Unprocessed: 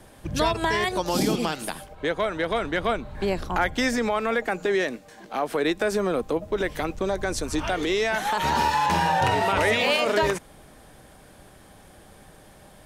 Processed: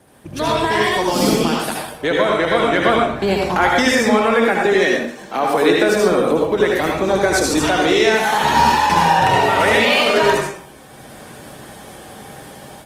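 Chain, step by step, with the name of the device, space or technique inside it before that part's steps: far-field microphone of a smart speaker (reverberation RT60 0.55 s, pre-delay 67 ms, DRR -1 dB; high-pass 100 Hz 12 dB/octave; level rider gain up to 11.5 dB; trim -1 dB; Opus 24 kbps 48 kHz)

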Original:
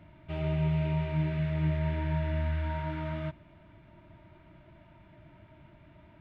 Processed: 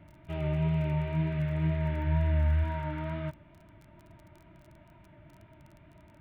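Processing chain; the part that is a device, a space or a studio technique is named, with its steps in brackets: lo-fi chain (low-pass 3.6 kHz 12 dB/octave; wow and flutter 34 cents; crackle 22 per s -44 dBFS); 2.06–2.64 s: peaking EQ 83 Hz +6 dB

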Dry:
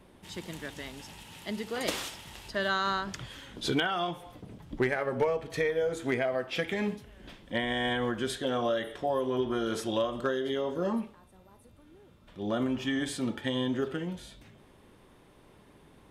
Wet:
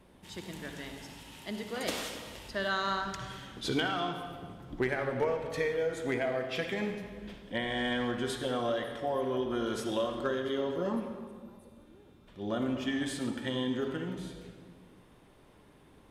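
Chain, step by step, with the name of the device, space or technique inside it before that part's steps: saturated reverb return (on a send at -4.5 dB: reverberation RT60 1.7 s, pre-delay 52 ms + saturation -24.5 dBFS, distortion -16 dB); on the sum: trim -3 dB

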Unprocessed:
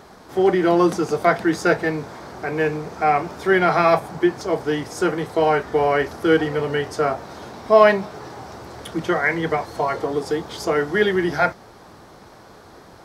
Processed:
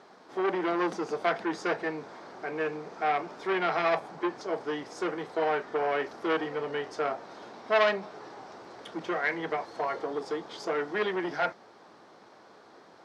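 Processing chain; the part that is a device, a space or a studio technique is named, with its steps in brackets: public-address speaker with an overloaded transformer (transformer saturation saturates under 1.7 kHz; band-pass 250–5500 Hz); trim -8 dB

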